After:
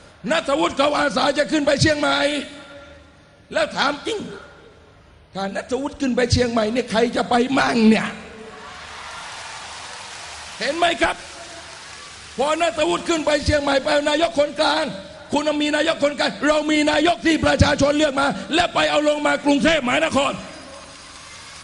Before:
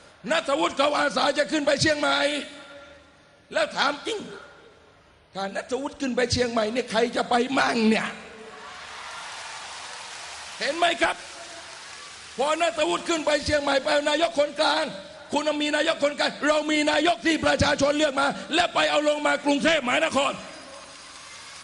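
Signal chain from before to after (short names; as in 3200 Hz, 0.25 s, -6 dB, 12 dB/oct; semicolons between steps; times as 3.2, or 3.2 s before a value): low shelf 210 Hz +9.5 dB; gain +3 dB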